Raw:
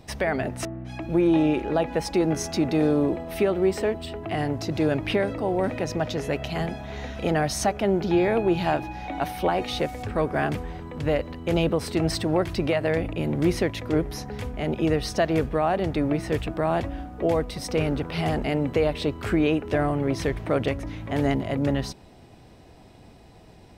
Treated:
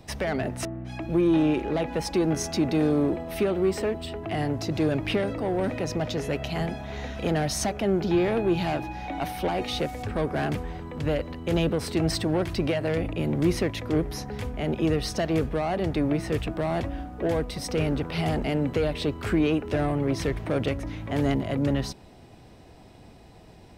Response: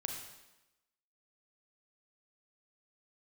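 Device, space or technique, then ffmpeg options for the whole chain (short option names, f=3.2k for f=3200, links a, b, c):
one-band saturation: -filter_complex "[0:a]acrossover=split=350|2800[a][b][c];[b]asoftclip=type=tanh:threshold=-25dB[d];[a][d][c]amix=inputs=3:normalize=0"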